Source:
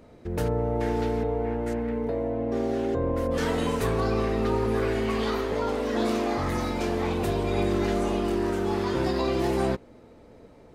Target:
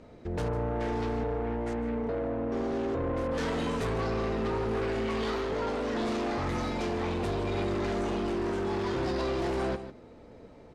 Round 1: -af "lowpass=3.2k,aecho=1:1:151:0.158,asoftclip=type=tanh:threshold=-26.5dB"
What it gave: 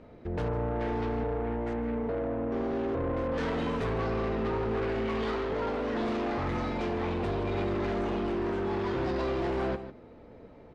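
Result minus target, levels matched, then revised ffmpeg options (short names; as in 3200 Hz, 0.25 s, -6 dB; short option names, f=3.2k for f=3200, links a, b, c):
8000 Hz band -10.0 dB
-af "lowpass=7.1k,aecho=1:1:151:0.158,asoftclip=type=tanh:threshold=-26.5dB"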